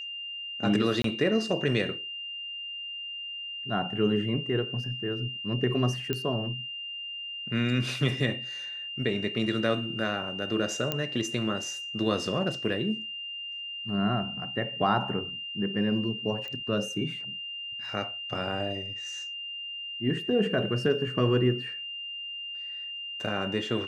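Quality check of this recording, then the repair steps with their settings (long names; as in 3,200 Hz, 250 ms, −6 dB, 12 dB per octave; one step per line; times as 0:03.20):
whistle 2,800 Hz −35 dBFS
0:01.02–0:01.04: drop-out 23 ms
0:06.13: click −15 dBFS
0:10.92: click −13 dBFS
0:16.48: click −25 dBFS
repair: click removal
notch filter 2,800 Hz, Q 30
repair the gap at 0:01.02, 23 ms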